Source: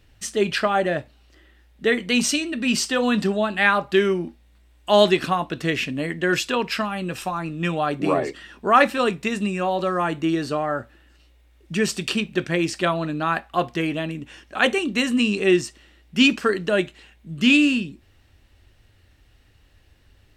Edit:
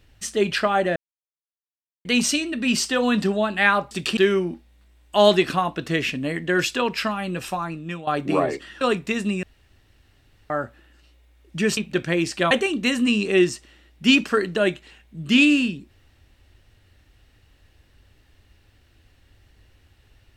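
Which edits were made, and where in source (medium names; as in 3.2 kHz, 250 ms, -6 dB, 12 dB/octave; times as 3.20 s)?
0.96–2.05 s: mute
7.32–7.81 s: fade out, to -14.5 dB
8.55–8.97 s: delete
9.59–10.66 s: room tone
11.93–12.19 s: move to 3.91 s
12.93–14.63 s: delete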